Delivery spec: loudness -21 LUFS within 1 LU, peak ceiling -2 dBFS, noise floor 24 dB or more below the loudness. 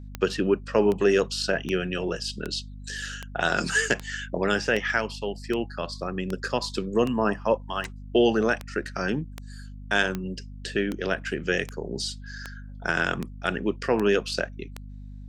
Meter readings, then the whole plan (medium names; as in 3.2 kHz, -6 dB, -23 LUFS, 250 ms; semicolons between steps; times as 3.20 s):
clicks found 20; hum 50 Hz; highest harmonic 250 Hz; hum level -38 dBFS; loudness -26.5 LUFS; peak level -6.5 dBFS; loudness target -21.0 LUFS
-> de-click; de-hum 50 Hz, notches 5; trim +5.5 dB; peak limiter -2 dBFS